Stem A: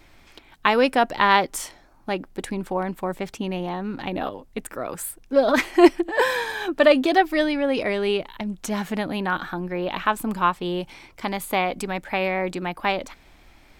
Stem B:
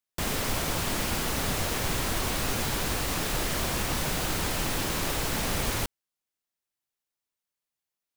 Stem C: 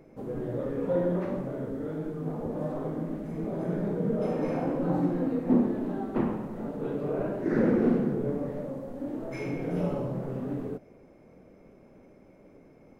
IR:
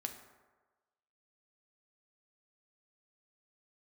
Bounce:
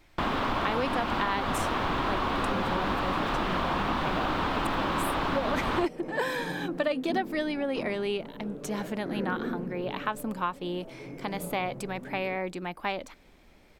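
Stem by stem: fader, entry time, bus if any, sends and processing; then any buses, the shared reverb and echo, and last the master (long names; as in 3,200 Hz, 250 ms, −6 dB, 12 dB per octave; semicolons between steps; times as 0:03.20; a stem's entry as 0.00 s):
−7.0 dB, 0.00 s, no send, no processing
−1.5 dB, 0.00 s, no send, drawn EQ curve 140 Hz 0 dB, 280 Hz +9 dB, 460 Hz +3 dB, 1,100 Hz +13 dB, 2,000 Hz +2 dB, 3,500 Hz +2 dB, 6,400 Hz −17 dB, 11,000 Hz −24 dB
−9.5 dB, 1.60 s, no send, no processing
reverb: not used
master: downward compressor, threshold −24 dBFS, peak gain reduction 10.5 dB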